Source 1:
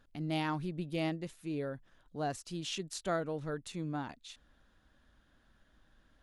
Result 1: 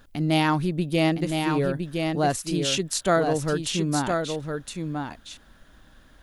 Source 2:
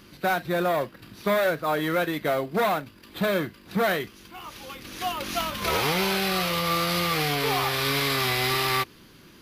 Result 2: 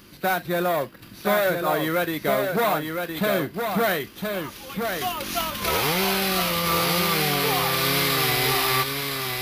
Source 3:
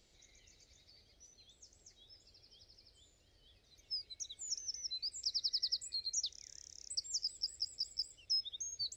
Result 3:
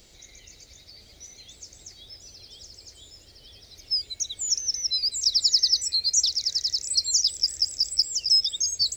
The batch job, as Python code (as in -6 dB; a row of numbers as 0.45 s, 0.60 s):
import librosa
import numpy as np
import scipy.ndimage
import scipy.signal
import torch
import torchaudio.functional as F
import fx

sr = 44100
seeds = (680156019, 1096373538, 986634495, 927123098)

y = fx.high_shelf(x, sr, hz=10000.0, db=9.0)
y = y + 10.0 ** (-5.0 / 20.0) * np.pad(y, (int(1013 * sr / 1000.0), 0))[:len(y)]
y = librosa.util.normalize(y) * 10.0 ** (-9 / 20.0)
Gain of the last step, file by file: +12.5 dB, +1.0 dB, +14.0 dB